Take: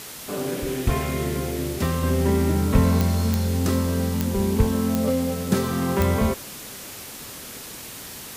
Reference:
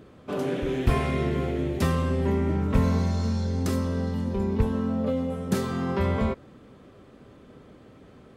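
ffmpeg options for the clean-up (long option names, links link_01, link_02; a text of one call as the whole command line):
ffmpeg -i in.wav -af "adeclick=threshold=4,afwtdn=0.014,asetnsamples=nb_out_samples=441:pad=0,asendcmd='2.03 volume volume -4dB',volume=0dB" out.wav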